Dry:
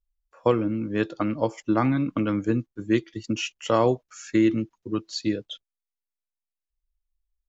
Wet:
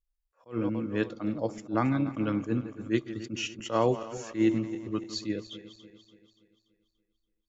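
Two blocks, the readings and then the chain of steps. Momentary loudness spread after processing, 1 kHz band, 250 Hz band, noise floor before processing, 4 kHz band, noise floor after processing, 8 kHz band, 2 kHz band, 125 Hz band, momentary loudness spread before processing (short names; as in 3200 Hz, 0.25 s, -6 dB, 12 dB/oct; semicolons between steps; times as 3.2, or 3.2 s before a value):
10 LU, -5.5 dB, -5.0 dB, under -85 dBFS, -4.5 dB, -80 dBFS, n/a, -4.5 dB, -4.5 dB, 9 LU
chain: regenerating reverse delay 0.144 s, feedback 68%, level -14 dB; spectral gain 1.22–1.75, 880–3400 Hz -7 dB; attack slew limiter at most 250 dB/s; gain -4 dB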